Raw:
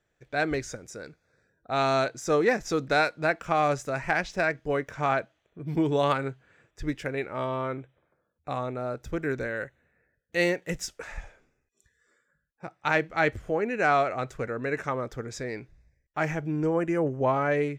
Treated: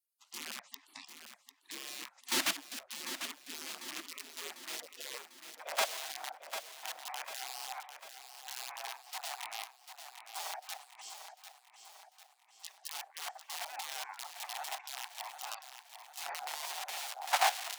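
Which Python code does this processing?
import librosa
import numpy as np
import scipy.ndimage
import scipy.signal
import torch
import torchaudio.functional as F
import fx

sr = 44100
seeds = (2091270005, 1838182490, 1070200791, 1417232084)

p1 = fx.tape_stop_end(x, sr, length_s=0.85)
p2 = fx.env_lowpass_down(p1, sr, base_hz=470.0, full_db=-25.0)
p3 = (np.mod(10.0 ** (25.5 / 20.0) * p2 + 1.0, 2.0) - 1.0) / 10.0 ** (25.5 / 20.0)
p4 = p2 + F.gain(torch.from_numpy(p3), -11.0).numpy()
p5 = scipy.signal.sosfilt(scipy.signal.butter(2, 80.0, 'highpass', fs=sr, output='sos'), p4)
p6 = fx.low_shelf(p5, sr, hz=300.0, db=-6.5)
p7 = fx.hum_notches(p6, sr, base_hz=60, count=8)
p8 = fx.level_steps(p7, sr, step_db=14)
p9 = fx.spec_gate(p8, sr, threshold_db=-30, keep='weak')
p10 = fx.filter_sweep_highpass(p9, sr, from_hz=280.0, to_hz=760.0, start_s=3.7, end_s=6.28, q=6.7)
p11 = p10 + fx.echo_feedback(p10, sr, ms=747, feedback_pct=50, wet_db=-9.5, dry=0)
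p12 = fx.doppler_dist(p11, sr, depth_ms=0.13)
y = F.gain(torch.from_numpy(p12), 17.0).numpy()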